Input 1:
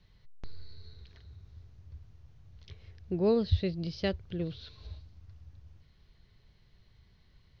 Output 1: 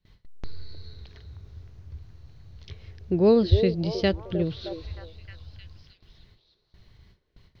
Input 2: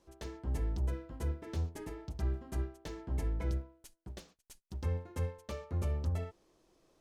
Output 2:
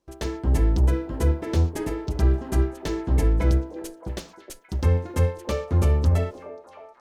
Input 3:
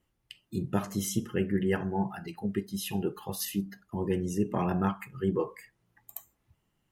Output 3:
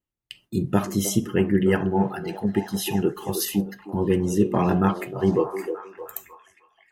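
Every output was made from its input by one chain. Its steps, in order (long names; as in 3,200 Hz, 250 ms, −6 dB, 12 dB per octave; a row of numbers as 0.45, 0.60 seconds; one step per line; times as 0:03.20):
noise gate with hold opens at −51 dBFS
parametric band 310 Hz +2 dB
echo through a band-pass that steps 310 ms, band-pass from 440 Hz, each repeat 0.7 octaves, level −7 dB
loudness normalisation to −24 LKFS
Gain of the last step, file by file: +7.0, +14.0, +7.0 decibels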